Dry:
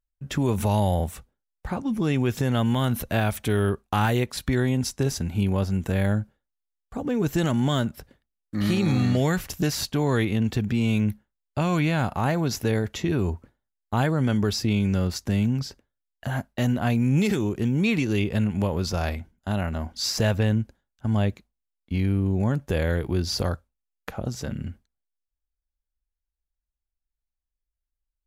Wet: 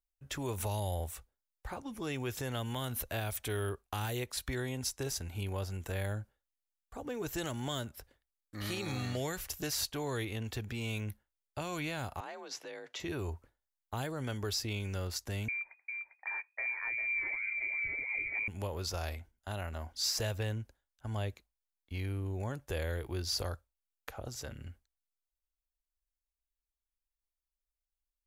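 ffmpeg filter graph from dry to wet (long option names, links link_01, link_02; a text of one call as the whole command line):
ffmpeg -i in.wav -filter_complex "[0:a]asettb=1/sr,asplit=3[link_01][link_02][link_03];[link_01]atrim=end=12.204[link_04];[link_02]atrim=start=12.2:end=13,asetpts=PTS-STARTPTS,afade=type=in:duration=0.004:curve=qsin,afade=type=out:start_time=0.796:duration=0.004:curve=qsin,acompressor=threshold=-26dB:ratio=5:attack=3.2:release=140:knee=1:detection=peak,afreqshift=46,highpass=390,lowpass=5200[link_05];[link_03]atrim=start=12.996[link_06];[link_04][link_05]acrossfade=duration=0.004:curve1=hsin:curve2=qsin[link_07];[link_07][link_06]acrossfade=duration=0.004:curve1=qsin:curve2=hsin,asettb=1/sr,asplit=3[link_08][link_09][link_10];[link_08]atrim=end=15.484[link_11];[link_09]atrim=start=15.48:end=18.48,asetpts=PTS-STARTPTS,afade=type=in:duration=0.004:curve=qsin,afade=type=out:start_time=2.996:duration=0.004:curve=qsin,equalizer=frequency=270:width_type=o:width=0.3:gain=-13,aecho=1:1:399|412:0.501|0.119,atrim=end_sample=132300,lowpass=frequency=2100:width_type=q:width=0.5098,lowpass=frequency=2100:width_type=q:width=0.6013,lowpass=frequency=2100:width_type=q:width=0.9,lowpass=frequency=2100:width_type=q:width=2.563,afreqshift=-2500[link_12];[link_10]atrim=start=18.476[link_13];[link_11][link_12]acrossfade=duration=0.004:curve1=hsin:curve2=qsin[link_14];[link_14][link_13]acrossfade=duration=0.004:curve1=qsin:curve2=hsin,equalizer=frequency=190:width_type=o:width=1.2:gain=-14.5,acrossover=split=490|3000[link_15][link_16][link_17];[link_16]acompressor=threshold=-32dB:ratio=6[link_18];[link_15][link_18][link_17]amix=inputs=3:normalize=0,highshelf=frequency=7300:gain=6.5,volume=-7.5dB" out.wav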